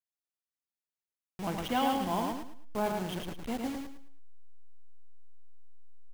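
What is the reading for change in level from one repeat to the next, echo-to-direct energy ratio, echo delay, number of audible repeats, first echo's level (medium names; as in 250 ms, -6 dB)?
-10.5 dB, -3.5 dB, 108 ms, 3, -4.0 dB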